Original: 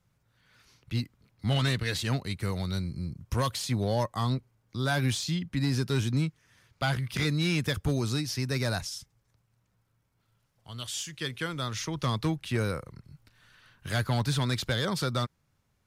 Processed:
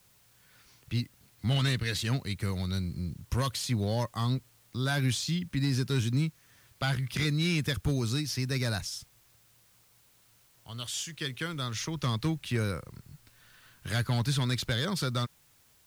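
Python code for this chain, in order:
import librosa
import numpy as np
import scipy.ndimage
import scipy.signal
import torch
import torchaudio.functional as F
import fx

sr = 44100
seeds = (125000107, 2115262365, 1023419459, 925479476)

y = fx.dynamic_eq(x, sr, hz=720.0, q=0.74, threshold_db=-42.0, ratio=4.0, max_db=-5)
y = fx.dmg_noise_colour(y, sr, seeds[0], colour='white', level_db=-64.0)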